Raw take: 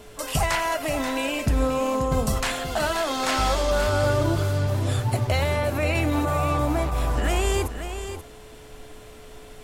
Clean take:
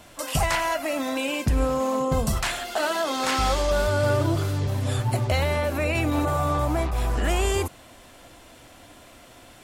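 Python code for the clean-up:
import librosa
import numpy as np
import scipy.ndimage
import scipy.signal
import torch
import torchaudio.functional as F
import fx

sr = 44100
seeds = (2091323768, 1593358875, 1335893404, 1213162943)

y = fx.notch(x, sr, hz=430.0, q=30.0)
y = fx.noise_reduce(y, sr, print_start_s=8.21, print_end_s=8.71, reduce_db=6.0)
y = fx.fix_echo_inverse(y, sr, delay_ms=532, level_db=-9.5)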